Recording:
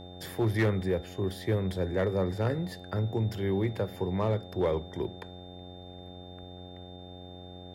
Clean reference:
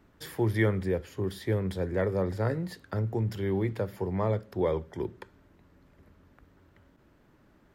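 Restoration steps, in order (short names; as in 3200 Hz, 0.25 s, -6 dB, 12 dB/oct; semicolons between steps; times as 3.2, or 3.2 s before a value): clip repair -20 dBFS; de-hum 90.4 Hz, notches 9; notch 3600 Hz, Q 30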